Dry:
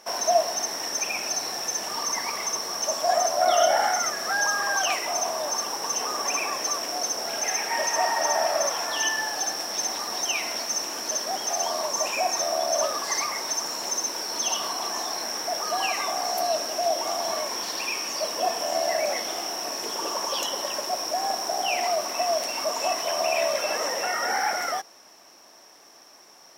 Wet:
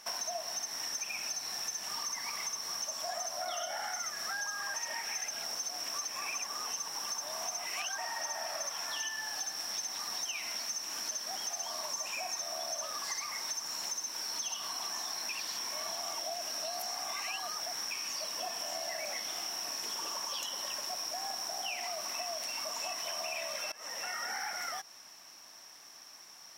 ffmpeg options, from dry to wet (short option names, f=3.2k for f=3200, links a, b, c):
-filter_complex "[0:a]asplit=6[a][b][c][d][e][f];[a]atrim=end=4.742[g];[b]atrim=start=4.738:end=7.982,asetpts=PTS-STARTPTS,areverse[h];[c]atrim=start=7.978:end=15.292[i];[d]atrim=start=15.288:end=17.912,asetpts=PTS-STARTPTS,areverse[j];[e]atrim=start=17.908:end=23.72,asetpts=PTS-STARTPTS,afade=t=out:st=5.808:d=0.004:c=hsin:silence=0.0891251[k];[f]atrim=start=23.72,asetpts=PTS-STARTPTS,afade=t=in:d=0.71:silence=0.0891251[l];[g][h]acrossfade=d=0.004:c1=hsin:c2=hsin[m];[m][i]acrossfade=d=0.004:c1=hsin:c2=hsin[n];[n][j]acrossfade=d=0.004:c1=hsin:c2=hsin[o];[k][l]concat=n=2:v=0:a=1[p];[o][p]acrossfade=d=0.004:c1=hsin:c2=hsin,equalizer=f=440:w=0.67:g=-12.5,acompressor=threshold=-35dB:ratio=6"